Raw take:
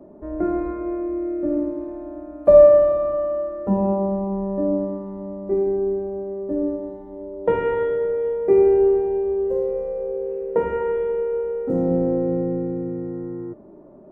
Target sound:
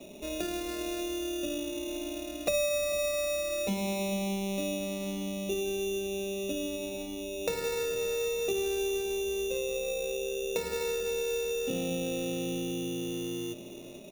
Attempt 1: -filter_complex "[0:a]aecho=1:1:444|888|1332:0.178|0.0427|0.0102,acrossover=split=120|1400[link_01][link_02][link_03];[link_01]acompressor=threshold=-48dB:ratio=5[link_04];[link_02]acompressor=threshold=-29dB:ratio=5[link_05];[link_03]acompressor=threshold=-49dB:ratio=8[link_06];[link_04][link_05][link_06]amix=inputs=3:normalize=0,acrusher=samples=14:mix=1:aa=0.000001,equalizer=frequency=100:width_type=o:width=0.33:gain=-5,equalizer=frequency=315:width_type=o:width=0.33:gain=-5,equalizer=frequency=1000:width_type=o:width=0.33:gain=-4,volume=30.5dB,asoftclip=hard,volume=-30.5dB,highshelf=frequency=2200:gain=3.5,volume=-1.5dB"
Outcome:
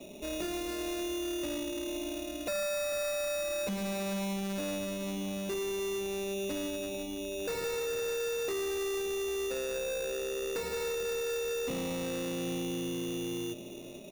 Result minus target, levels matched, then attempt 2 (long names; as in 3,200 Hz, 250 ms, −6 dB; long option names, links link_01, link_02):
gain into a clipping stage and back: distortion +32 dB
-filter_complex "[0:a]aecho=1:1:444|888|1332:0.178|0.0427|0.0102,acrossover=split=120|1400[link_01][link_02][link_03];[link_01]acompressor=threshold=-48dB:ratio=5[link_04];[link_02]acompressor=threshold=-29dB:ratio=5[link_05];[link_03]acompressor=threshold=-49dB:ratio=8[link_06];[link_04][link_05][link_06]amix=inputs=3:normalize=0,acrusher=samples=14:mix=1:aa=0.000001,equalizer=frequency=100:width_type=o:width=0.33:gain=-5,equalizer=frequency=315:width_type=o:width=0.33:gain=-5,equalizer=frequency=1000:width_type=o:width=0.33:gain=-4,volume=19dB,asoftclip=hard,volume=-19dB,highshelf=frequency=2200:gain=3.5,volume=-1.5dB"